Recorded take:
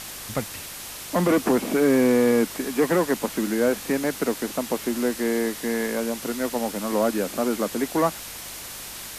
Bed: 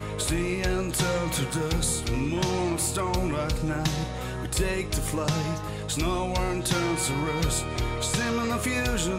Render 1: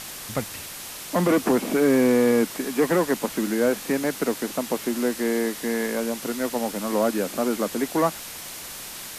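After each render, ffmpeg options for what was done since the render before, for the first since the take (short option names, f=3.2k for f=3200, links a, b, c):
-af "bandreject=f=50:t=h:w=4,bandreject=f=100:t=h:w=4"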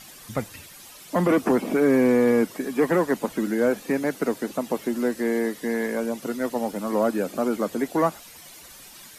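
-af "afftdn=nr=12:nf=-37"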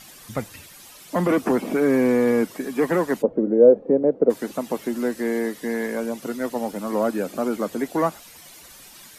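-filter_complex "[0:a]asplit=3[a][b][c];[a]afade=t=out:st=3.21:d=0.02[d];[b]lowpass=f=510:t=q:w=3.8,afade=t=in:st=3.21:d=0.02,afade=t=out:st=4.29:d=0.02[e];[c]afade=t=in:st=4.29:d=0.02[f];[d][e][f]amix=inputs=3:normalize=0"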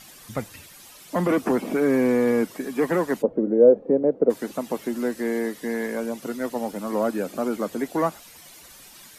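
-af "volume=-1.5dB"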